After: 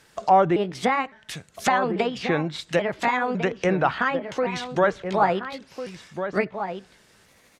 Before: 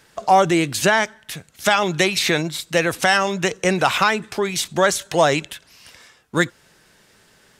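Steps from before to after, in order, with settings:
pitch shifter gated in a rhythm +4 semitones, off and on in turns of 558 ms
slap from a distant wall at 240 metres, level −8 dB
treble cut that deepens with the level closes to 1,600 Hz, closed at −16.5 dBFS
level −2.5 dB

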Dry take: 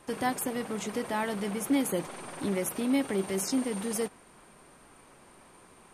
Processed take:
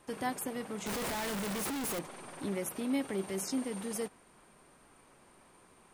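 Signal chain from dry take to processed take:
0:00.86–0:01.99: sign of each sample alone
level −5.5 dB

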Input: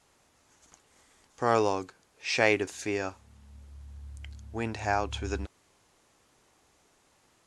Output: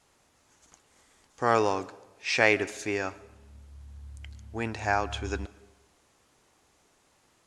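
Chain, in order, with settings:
comb and all-pass reverb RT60 1.1 s, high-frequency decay 0.75×, pre-delay 80 ms, DRR 19 dB
dynamic equaliser 1,700 Hz, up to +4 dB, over −41 dBFS, Q 1

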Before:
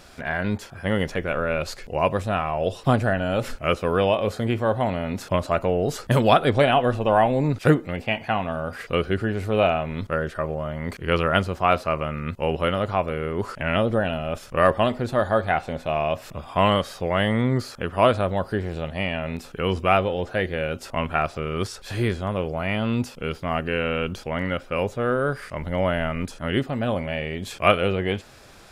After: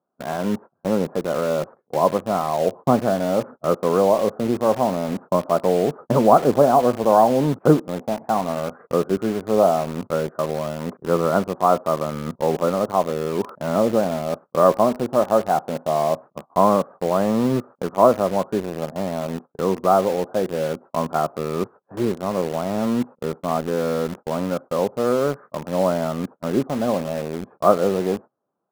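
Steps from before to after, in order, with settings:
high-pass filter 160 Hz 24 dB per octave
noise gate −36 dBFS, range −27 dB
Butterworth low-pass 1,200 Hz 36 dB per octave
in parallel at −4.5 dB: bit reduction 5 bits

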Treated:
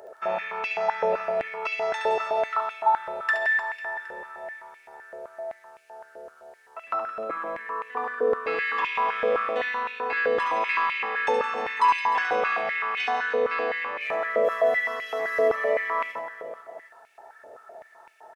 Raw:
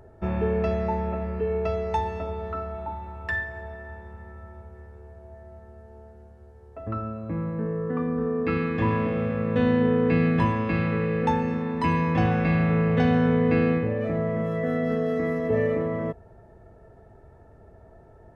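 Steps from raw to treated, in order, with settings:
high-shelf EQ 2,300 Hz +10.5 dB
in parallel at +2.5 dB: compressor whose output falls as the input rises −28 dBFS, ratio −1
on the sum: reverse bouncing-ball delay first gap 70 ms, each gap 1.4×, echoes 5
high-pass on a step sequencer 7.8 Hz 540–2,400 Hz
level −8.5 dB

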